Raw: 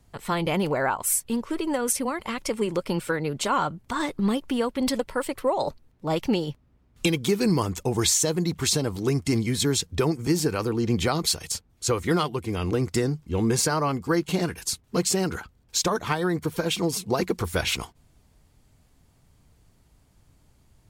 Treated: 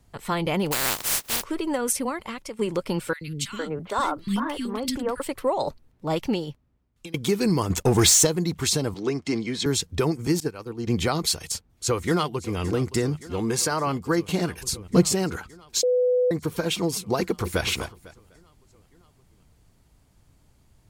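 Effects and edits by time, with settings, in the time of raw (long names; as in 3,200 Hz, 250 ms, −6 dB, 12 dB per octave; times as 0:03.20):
0:00.71–0:01.42: compressing power law on the bin magnitudes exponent 0.13
0:02.08–0:02.59: fade out linear, to −12.5 dB
0:03.13–0:05.20: three-band delay without the direct sound highs, lows, mids 80/460 ms, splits 280/1,900 Hz
0:06.14–0:07.14: fade out, to −23.5 dB
0:07.70–0:08.27: leveller curve on the samples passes 2
0:08.94–0:09.66: three-way crossover with the lows and the highs turned down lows −15 dB, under 190 Hz, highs −21 dB, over 6,500 Hz
0:10.40–0:10.87: downward expander −19 dBFS
0:11.46–0:12.59: delay throw 570 ms, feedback 80%, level −16.5 dB
0:13.21–0:13.87: low-shelf EQ 220 Hz −7 dB
0:14.61–0:15.14: low-shelf EQ 390 Hz +11 dB
0:15.83–0:16.31: beep over 498 Hz −17.5 dBFS
0:17.20–0:17.63: delay throw 250 ms, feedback 25%, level −9 dB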